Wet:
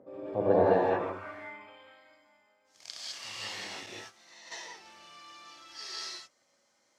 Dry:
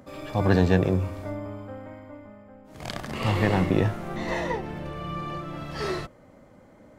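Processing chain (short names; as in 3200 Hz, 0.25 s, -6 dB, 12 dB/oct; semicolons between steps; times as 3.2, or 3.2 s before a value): non-linear reverb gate 0.23 s rising, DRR -5.5 dB; 3.86–4.52 gate -20 dBFS, range -10 dB; band-pass sweep 450 Hz -> 5600 Hz, 0.42–2.24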